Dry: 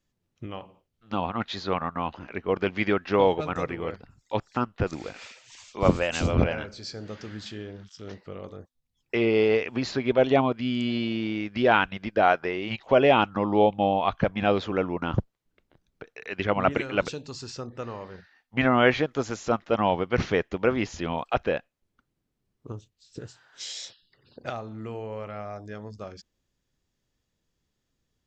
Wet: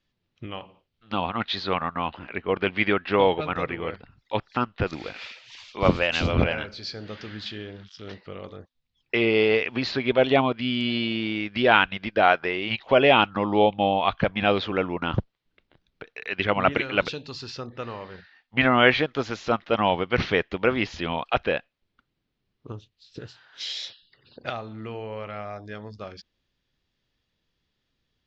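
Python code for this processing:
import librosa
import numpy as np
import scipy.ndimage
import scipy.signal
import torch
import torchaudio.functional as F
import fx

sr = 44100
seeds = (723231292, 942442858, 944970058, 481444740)

y = fx.lowpass(x, sr, hz=4000.0, slope=12, at=(2.06, 4.5))
y = scipy.signal.sosfilt(scipy.signal.butter(4, 4200.0, 'lowpass', fs=sr, output='sos'), y)
y = fx.high_shelf(y, sr, hz=2100.0, db=11.0)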